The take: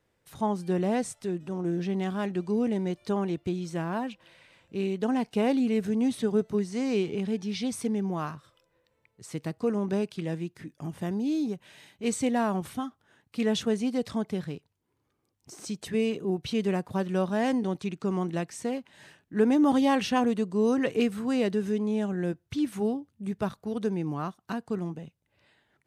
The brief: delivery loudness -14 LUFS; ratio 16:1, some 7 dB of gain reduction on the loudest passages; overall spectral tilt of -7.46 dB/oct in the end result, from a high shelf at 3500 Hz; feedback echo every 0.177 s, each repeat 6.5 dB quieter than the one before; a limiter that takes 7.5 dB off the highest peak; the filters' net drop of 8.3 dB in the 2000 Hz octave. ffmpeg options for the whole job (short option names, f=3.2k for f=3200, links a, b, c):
-af "equalizer=f=2k:t=o:g=-8.5,highshelf=f=3.5k:g=-8,acompressor=threshold=-26dB:ratio=16,alimiter=level_in=3dB:limit=-24dB:level=0:latency=1,volume=-3dB,aecho=1:1:177|354|531|708|885|1062:0.473|0.222|0.105|0.0491|0.0231|0.0109,volume=20.5dB"